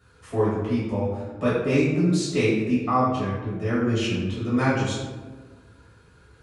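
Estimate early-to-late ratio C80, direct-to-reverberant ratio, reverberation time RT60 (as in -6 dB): 3.0 dB, -11.0 dB, 1.4 s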